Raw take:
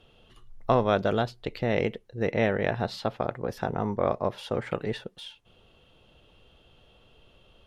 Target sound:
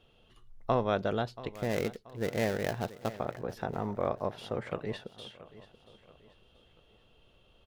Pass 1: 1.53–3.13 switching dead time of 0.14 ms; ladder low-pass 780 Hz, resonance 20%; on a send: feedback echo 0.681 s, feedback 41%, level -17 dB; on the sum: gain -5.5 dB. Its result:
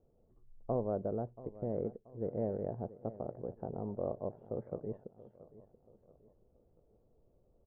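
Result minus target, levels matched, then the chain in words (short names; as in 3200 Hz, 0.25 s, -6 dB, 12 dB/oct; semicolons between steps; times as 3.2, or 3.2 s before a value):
1000 Hz band -5.5 dB
1.53–3.13 switching dead time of 0.14 ms; on a send: feedback echo 0.681 s, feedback 41%, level -17 dB; on the sum: gain -5.5 dB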